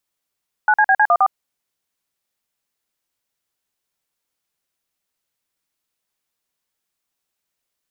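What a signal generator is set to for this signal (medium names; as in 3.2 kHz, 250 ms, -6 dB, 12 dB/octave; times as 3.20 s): DTMF "9CBC14", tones 59 ms, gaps 46 ms, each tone -13 dBFS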